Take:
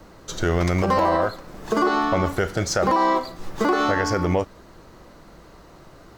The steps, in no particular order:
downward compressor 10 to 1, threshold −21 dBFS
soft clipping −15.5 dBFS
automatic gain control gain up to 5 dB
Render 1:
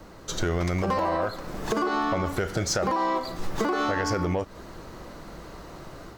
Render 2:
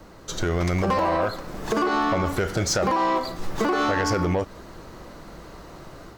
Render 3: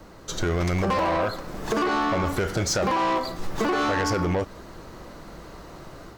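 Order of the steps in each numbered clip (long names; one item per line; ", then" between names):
automatic gain control, then downward compressor, then soft clipping
downward compressor, then automatic gain control, then soft clipping
automatic gain control, then soft clipping, then downward compressor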